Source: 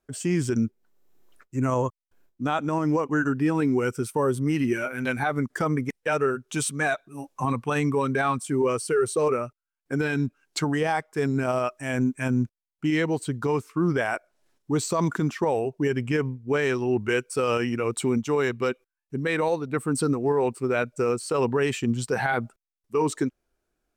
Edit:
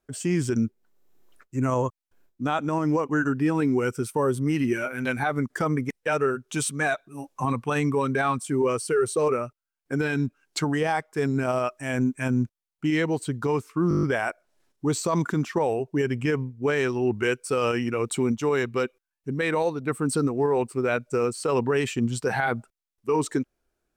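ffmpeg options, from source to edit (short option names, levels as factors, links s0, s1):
-filter_complex "[0:a]asplit=8[s0][s1][s2][s3][s4][s5][s6][s7];[s0]atrim=end=13.912[s8];[s1]atrim=start=13.888:end=13.912[s9];[s2]atrim=start=13.888:end=13.912[s10];[s3]atrim=start=13.888:end=13.912[s11];[s4]atrim=start=13.888:end=13.912[s12];[s5]atrim=start=13.888:end=13.912[s13];[s6]atrim=start=13.888:end=13.912[s14];[s7]atrim=start=13.888[s15];[s8][s9]acrossfade=d=0.004:c1=hsin:c2=hsin[s16];[s16][s10]acrossfade=d=0.004:c1=hsin:c2=hsin[s17];[s17][s11]acrossfade=d=0.004:c1=hsin:c2=hsin[s18];[s18][s12]acrossfade=d=0.004:c1=hsin:c2=hsin[s19];[s19][s13]acrossfade=d=0.004:c1=hsin:c2=hsin[s20];[s20][s14]acrossfade=d=0.004:c1=hsin:c2=hsin[s21];[s21][s15]acrossfade=d=0.004:c1=hsin:c2=hsin"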